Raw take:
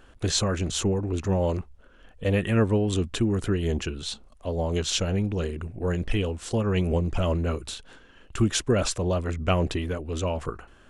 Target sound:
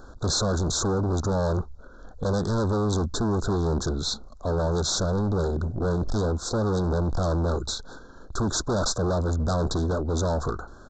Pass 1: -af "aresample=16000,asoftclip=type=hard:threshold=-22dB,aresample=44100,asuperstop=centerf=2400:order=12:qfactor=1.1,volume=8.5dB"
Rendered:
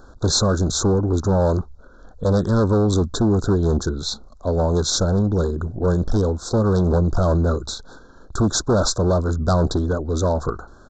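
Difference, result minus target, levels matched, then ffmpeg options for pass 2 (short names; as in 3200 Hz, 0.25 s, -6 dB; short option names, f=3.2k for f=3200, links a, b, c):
hard clip: distortion -7 dB
-af "aresample=16000,asoftclip=type=hard:threshold=-31dB,aresample=44100,asuperstop=centerf=2400:order=12:qfactor=1.1,volume=8.5dB"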